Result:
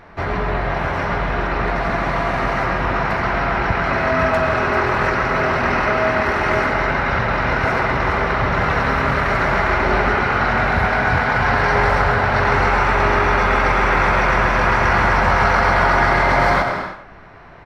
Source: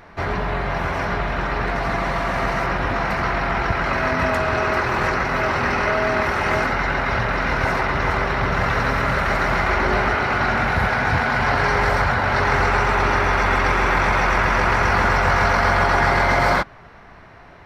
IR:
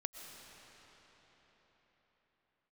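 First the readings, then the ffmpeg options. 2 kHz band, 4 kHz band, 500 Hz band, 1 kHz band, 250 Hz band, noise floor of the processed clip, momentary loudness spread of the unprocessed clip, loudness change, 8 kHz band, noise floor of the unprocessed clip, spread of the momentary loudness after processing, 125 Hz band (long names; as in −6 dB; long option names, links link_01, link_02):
+2.0 dB, 0.0 dB, +3.0 dB, +2.5 dB, +2.5 dB, −33 dBFS, 6 LU, +2.0 dB, can't be measured, −44 dBFS, 6 LU, +2.0 dB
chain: -filter_complex "[0:a]highshelf=frequency=4900:gain=-7.5,asplit=2[link_01][link_02];[link_02]adelay=100,highpass=300,lowpass=3400,asoftclip=type=hard:threshold=-13.5dB,volume=-8dB[link_03];[link_01][link_03]amix=inputs=2:normalize=0[link_04];[1:a]atrim=start_sample=2205,afade=type=out:start_time=0.38:duration=0.01,atrim=end_sample=17199[link_05];[link_04][link_05]afir=irnorm=-1:irlink=0,volume=4.5dB"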